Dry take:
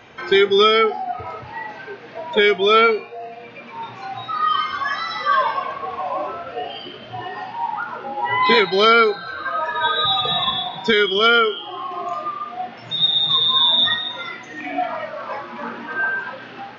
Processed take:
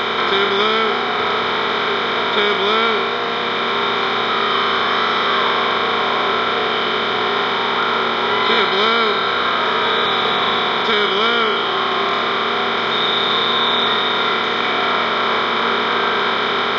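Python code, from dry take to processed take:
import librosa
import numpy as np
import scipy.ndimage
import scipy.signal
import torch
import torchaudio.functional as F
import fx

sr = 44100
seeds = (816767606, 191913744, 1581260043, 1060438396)

y = fx.bin_compress(x, sr, power=0.2)
y = F.gain(torch.from_numpy(y), -8.5).numpy()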